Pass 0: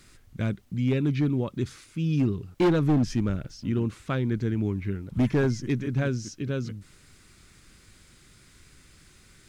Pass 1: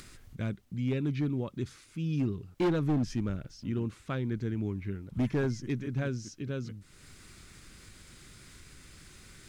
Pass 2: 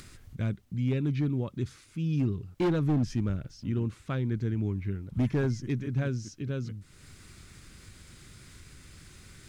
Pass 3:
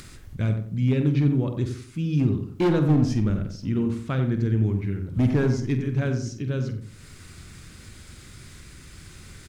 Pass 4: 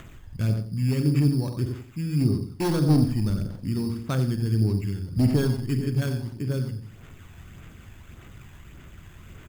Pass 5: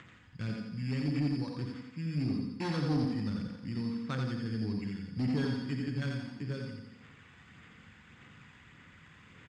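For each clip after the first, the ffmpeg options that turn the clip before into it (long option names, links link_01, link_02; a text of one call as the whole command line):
ffmpeg -i in.wav -af "acompressor=mode=upward:threshold=-36dB:ratio=2.5,volume=-6dB" out.wav
ffmpeg -i in.wav -af "equalizer=frequency=95:width_type=o:width=1.7:gain=5" out.wav
ffmpeg -i in.wav -filter_complex "[0:a]asplit=2[link_01][link_02];[link_02]adelay=47,volume=-10.5dB[link_03];[link_01][link_03]amix=inputs=2:normalize=0,asplit=2[link_04][link_05];[link_05]adelay=90,lowpass=frequency=1300:poles=1,volume=-6dB,asplit=2[link_06][link_07];[link_07]adelay=90,lowpass=frequency=1300:poles=1,volume=0.34,asplit=2[link_08][link_09];[link_09]adelay=90,lowpass=frequency=1300:poles=1,volume=0.34,asplit=2[link_10][link_11];[link_11]adelay=90,lowpass=frequency=1300:poles=1,volume=0.34[link_12];[link_06][link_08][link_10][link_12]amix=inputs=4:normalize=0[link_13];[link_04][link_13]amix=inputs=2:normalize=0,volume=5dB" out.wav
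ffmpeg -i in.wav -filter_complex "[0:a]acrossover=split=4300[link_01][link_02];[link_02]acompressor=threshold=-59dB:ratio=6[link_03];[link_01][link_03]amix=inputs=2:normalize=0,acrusher=samples=9:mix=1:aa=0.000001,aphaser=in_gain=1:out_gain=1:delay=1.2:decay=0.32:speed=1.7:type=sinusoidal,volume=-3dB" out.wav
ffmpeg -i in.wav -af "highpass=150,equalizer=frequency=240:width_type=q:width=4:gain=-4,equalizer=frequency=380:width_type=q:width=4:gain=-7,equalizer=frequency=640:width_type=q:width=4:gain=-9,equalizer=frequency=1900:width_type=q:width=4:gain=5,equalizer=frequency=6200:width_type=q:width=4:gain=-6,lowpass=frequency=6500:width=0.5412,lowpass=frequency=6500:width=1.3066,aecho=1:1:86|172|258|344|430|516:0.596|0.298|0.149|0.0745|0.0372|0.0186,asoftclip=type=tanh:threshold=-16.5dB,volume=-5.5dB" out.wav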